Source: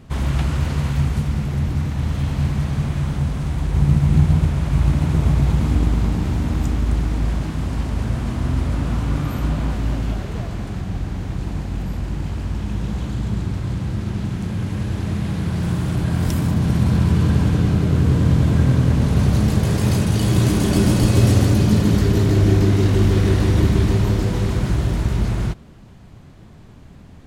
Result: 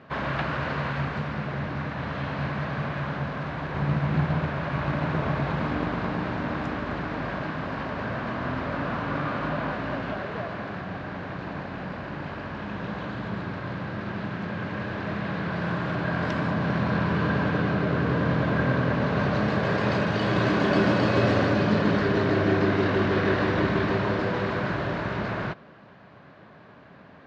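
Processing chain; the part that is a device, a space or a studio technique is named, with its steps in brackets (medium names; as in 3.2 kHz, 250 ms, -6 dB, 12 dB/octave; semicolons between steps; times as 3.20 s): kitchen radio (cabinet simulation 230–3900 Hz, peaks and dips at 230 Hz -4 dB, 340 Hz -4 dB, 600 Hz +6 dB, 1.1 kHz +5 dB, 1.6 kHz +8 dB, 3.3 kHz -4 dB)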